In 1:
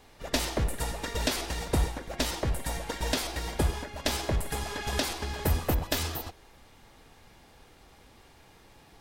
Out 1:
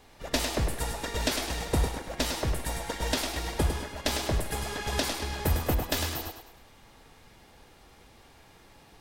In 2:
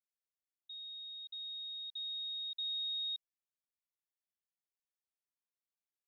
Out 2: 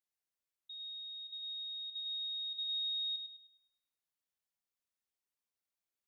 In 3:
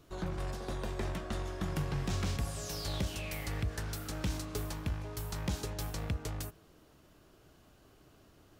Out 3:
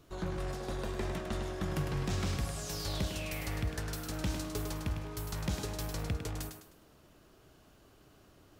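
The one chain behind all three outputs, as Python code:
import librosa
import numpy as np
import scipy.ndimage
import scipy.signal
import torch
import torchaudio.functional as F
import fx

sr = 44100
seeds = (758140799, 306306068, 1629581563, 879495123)

y = fx.echo_thinned(x, sr, ms=103, feedback_pct=38, hz=190.0, wet_db=-6.5)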